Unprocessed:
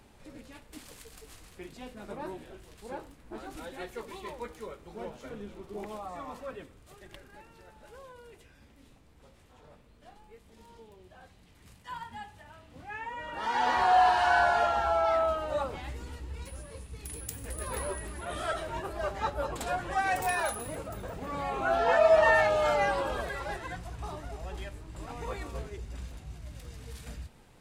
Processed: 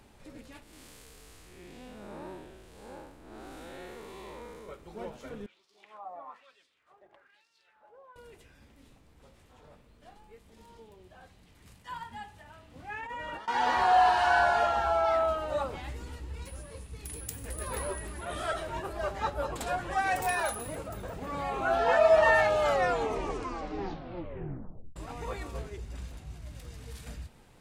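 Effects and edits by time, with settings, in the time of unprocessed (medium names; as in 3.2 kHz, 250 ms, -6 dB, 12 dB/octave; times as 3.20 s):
0.63–4.69 s: spectral blur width 199 ms
5.46–8.16 s: LFO band-pass sine 1.1 Hz 660–5100 Hz
12.84–13.48 s: compressor with a negative ratio -39 dBFS, ratio -0.5
22.61 s: tape stop 2.35 s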